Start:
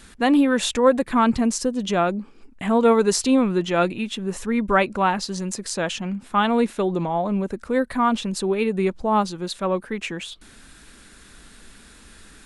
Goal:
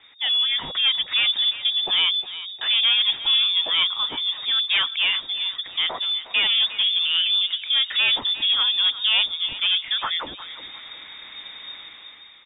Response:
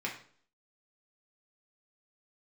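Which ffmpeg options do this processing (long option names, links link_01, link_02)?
-filter_complex "[0:a]dynaudnorm=framelen=110:gausssize=11:maxgain=11.5dB,asoftclip=type=tanh:threshold=-12dB,asplit=2[link_01][link_02];[link_02]aecho=0:1:358|716|1074|1432:0.188|0.0735|0.0287|0.0112[link_03];[link_01][link_03]amix=inputs=2:normalize=0,lowpass=frequency=3100:width_type=q:width=0.5098,lowpass=frequency=3100:width_type=q:width=0.6013,lowpass=frequency=3100:width_type=q:width=0.9,lowpass=frequency=3100:width_type=q:width=2.563,afreqshift=-3700,volume=-3.5dB"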